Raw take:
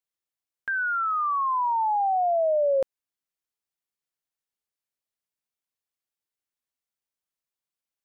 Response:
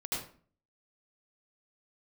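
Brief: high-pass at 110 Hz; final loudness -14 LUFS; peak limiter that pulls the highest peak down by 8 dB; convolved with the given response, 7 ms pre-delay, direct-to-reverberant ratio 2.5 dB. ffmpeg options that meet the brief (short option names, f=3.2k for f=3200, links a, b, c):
-filter_complex "[0:a]highpass=110,alimiter=level_in=2.5dB:limit=-24dB:level=0:latency=1,volume=-2.5dB,asplit=2[a][b];[1:a]atrim=start_sample=2205,adelay=7[c];[b][c]afir=irnorm=-1:irlink=0,volume=-6dB[d];[a][d]amix=inputs=2:normalize=0,volume=14dB"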